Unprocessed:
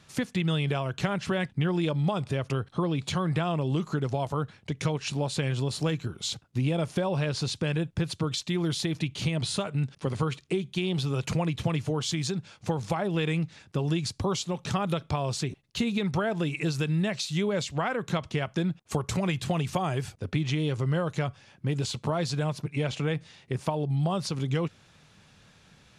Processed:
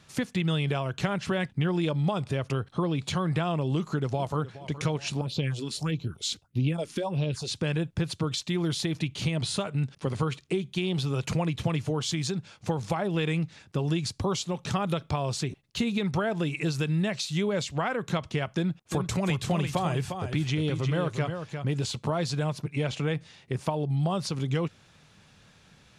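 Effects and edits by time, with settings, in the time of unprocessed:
0:03.76–0:04.59: delay throw 420 ms, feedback 45%, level −15.5 dB
0:05.21–0:07.51: all-pass phaser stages 4, 1.6 Hz, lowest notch 100–1,700 Hz
0:18.56–0:21.92: single-tap delay 353 ms −7 dB

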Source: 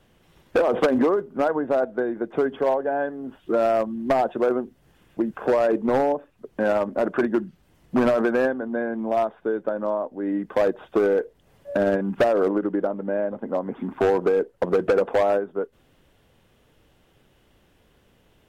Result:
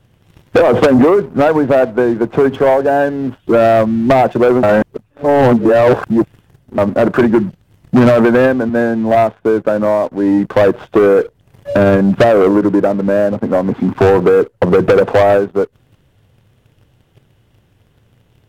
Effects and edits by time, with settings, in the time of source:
0:04.63–0:06.78: reverse
0:08.69–0:09.15: multiband upward and downward expander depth 100%
whole clip: parametric band 110 Hz +15 dB 0.99 octaves; leveller curve on the samples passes 2; level +5 dB

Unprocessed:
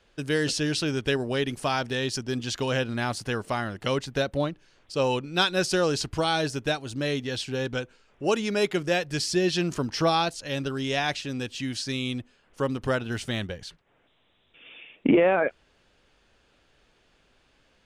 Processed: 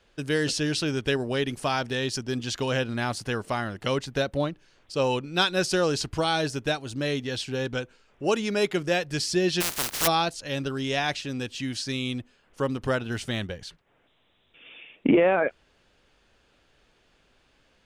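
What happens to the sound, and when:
0:09.60–0:10.06: compressing power law on the bin magnitudes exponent 0.13

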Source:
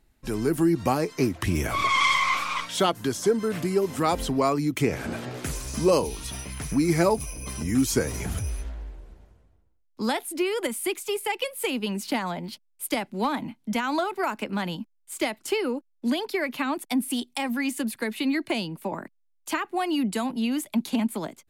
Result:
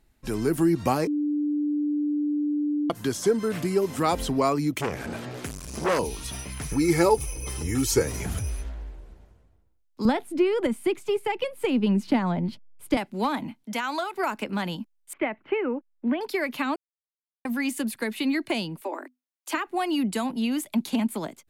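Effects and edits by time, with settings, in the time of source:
0:01.07–0:02.90: beep over 295 Hz −22.5 dBFS
0:04.72–0:05.99: saturating transformer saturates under 1,400 Hz
0:06.71–0:08.02: comb filter 2.3 ms
0:10.05–0:12.97: RIAA equalisation playback
0:13.63–0:14.13: high-pass filter 330 Hz → 950 Hz 6 dB per octave
0:15.13–0:16.21: Butterworth low-pass 2,500 Hz
0:16.76–0:17.45: silence
0:18.81–0:19.67: Chebyshev high-pass filter 250 Hz, order 10

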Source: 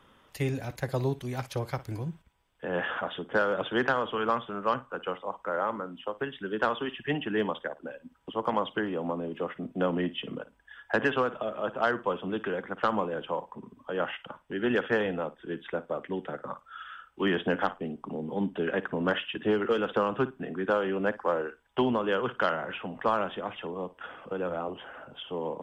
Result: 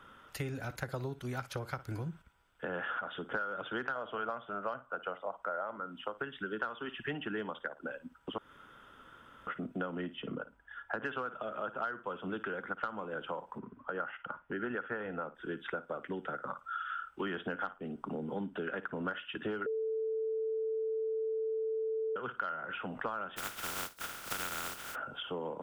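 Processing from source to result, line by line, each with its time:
0:03.95–0:05.78: parametric band 650 Hz +11.5 dB 0.44 octaves
0:08.38–0:09.47: fill with room tone
0:10.15–0:11.03: high-shelf EQ 2,100 Hz −10 dB
0:13.58–0:15.35: Chebyshev low-pass filter 1,900 Hz
0:19.66–0:22.16: beep over 442 Hz −17 dBFS
0:23.36–0:24.94: compressing power law on the bin magnitudes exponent 0.13
whole clip: parametric band 1,400 Hz +13 dB 0.26 octaves; downward compressor 6 to 1, threshold −35 dBFS

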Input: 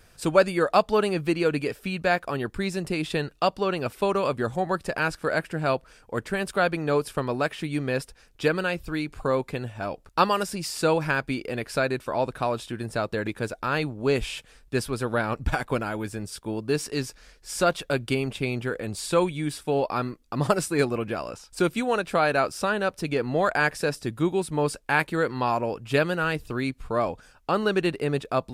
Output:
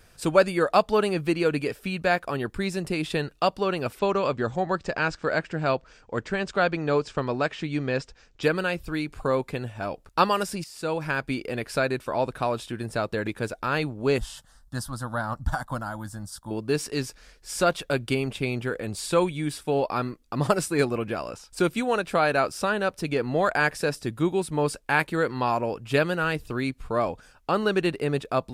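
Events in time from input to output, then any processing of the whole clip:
0:03.99–0:08.43: Butterworth low-pass 7,500 Hz 48 dB per octave
0:10.64–0:11.33: fade in, from −14.5 dB
0:14.18–0:16.51: phaser with its sweep stopped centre 1,000 Hz, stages 4

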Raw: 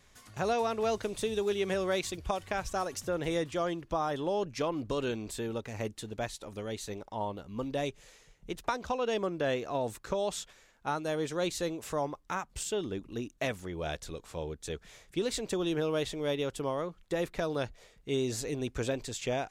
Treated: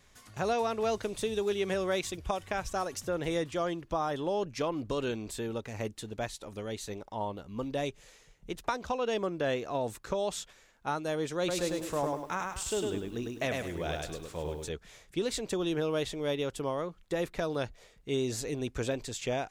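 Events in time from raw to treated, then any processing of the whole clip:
0:01.82–0:02.66: notch filter 4,400 Hz
0:11.38–0:14.69: feedback echo at a low word length 102 ms, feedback 35%, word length 10 bits, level −3 dB

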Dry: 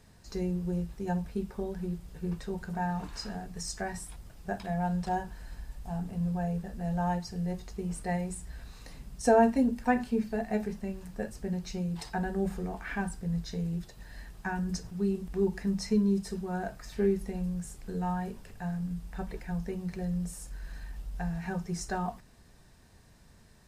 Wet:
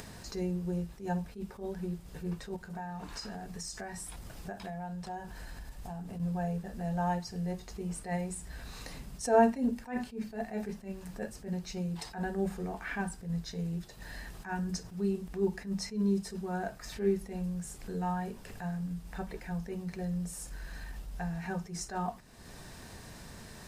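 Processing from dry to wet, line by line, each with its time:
0:02.56–0:06.20: downward compressor 2.5 to 1, threshold −42 dBFS
whole clip: low-shelf EQ 120 Hz −7 dB; upward compression, threshold −35 dBFS; level that may rise only so fast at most 170 dB per second

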